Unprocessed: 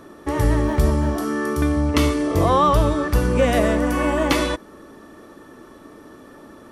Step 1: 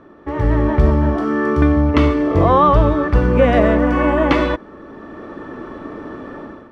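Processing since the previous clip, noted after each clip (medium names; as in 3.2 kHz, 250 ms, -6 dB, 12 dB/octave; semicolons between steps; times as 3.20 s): low-pass 2.3 kHz 12 dB/octave; level rider gain up to 14 dB; trim -1.5 dB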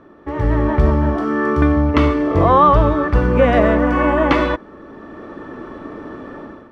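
dynamic bell 1.2 kHz, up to +3 dB, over -24 dBFS, Q 0.88; trim -1 dB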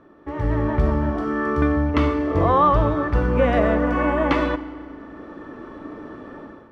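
FDN reverb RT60 2.5 s, low-frequency decay 1.05×, high-frequency decay 0.65×, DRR 13 dB; trim -5.5 dB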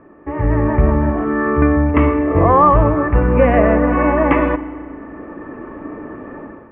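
steep low-pass 2.6 kHz 48 dB/octave; band-stop 1.4 kHz, Q 7.6; trim +6 dB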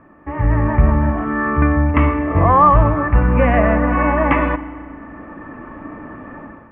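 peaking EQ 410 Hz -11 dB 0.84 oct; trim +1.5 dB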